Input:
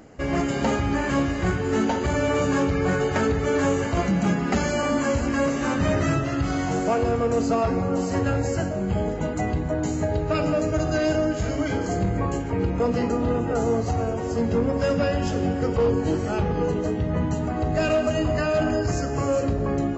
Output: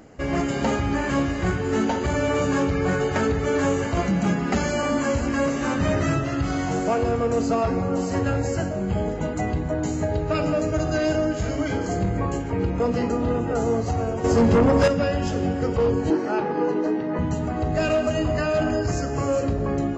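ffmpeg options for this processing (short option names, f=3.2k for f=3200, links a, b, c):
-filter_complex "[0:a]asettb=1/sr,asplit=3[a][b][c];[a]atrim=end=14.244[d];[b]atrim=start=14.24:end=14.88,asetpts=PTS-STARTPTS,afade=t=in:d=0.004:c=qsin,afade=t=out:st=0.636:d=0.004:c=qsin,aeval=exprs='0.237*sin(PI/2*1.78*val(0)/0.237)':c=same[e];[c]atrim=start=14.876[f];[d][e]acrossfade=d=0.004:c1=hsin:c2=qsin[g];[g][f]acrossfade=d=0.004:c1=qsin:c2=hsin,asettb=1/sr,asplit=3[h][i][j];[h]atrim=end=16.104[k];[i]atrim=start=16.1:end=17.19,asetpts=PTS-STARTPTS,afade=t=in:d=0.004:c=qsin,afade=t=out:st=1.086:d=0.004:c=qsin,highpass=f=180:w=0.5412,highpass=f=180:w=1.3066,equalizer=f=180:t=q:w=4:g=-6,equalizer=f=330:t=q:w=4:g=7,equalizer=f=910:t=q:w=4:g=6,equalizer=f=1.6k:t=q:w=4:g=4,equalizer=f=3.3k:t=q:w=4:g=-7,lowpass=f=5.5k:w=0.5412,lowpass=f=5.5k:w=1.3066[l];[j]atrim=start=17.186[m];[k][l]acrossfade=d=0.004:c1=hsin:c2=qsin[n];[n][m]acrossfade=d=0.004:c1=qsin:c2=hsin"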